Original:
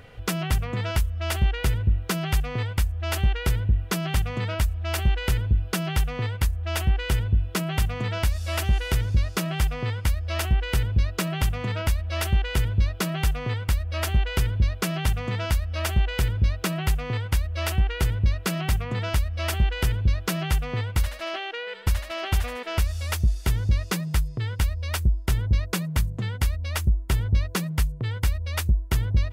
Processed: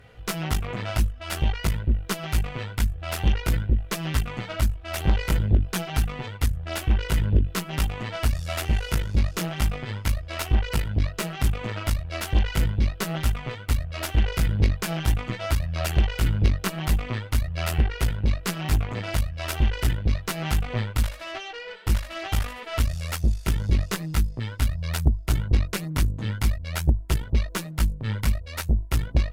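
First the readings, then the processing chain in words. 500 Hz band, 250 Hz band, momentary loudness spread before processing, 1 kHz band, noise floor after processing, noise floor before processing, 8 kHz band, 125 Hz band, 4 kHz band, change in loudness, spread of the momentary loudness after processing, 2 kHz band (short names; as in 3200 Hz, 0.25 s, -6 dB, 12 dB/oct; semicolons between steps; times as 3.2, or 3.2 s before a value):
-1.0 dB, +1.0 dB, 3 LU, -0.5 dB, -39 dBFS, -36 dBFS, -0.5 dB, -0.5 dB, -1.0 dB, -0.5 dB, 5 LU, -1.5 dB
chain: chorus voices 2, 0.48 Hz, delay 17 ms, depth 3.8 ms; added harmonics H 3 -16 dB, 5 -18 dB, 6 -17 dB, 7 -24 dB, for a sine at -12 dBFS; gain +2.5 dB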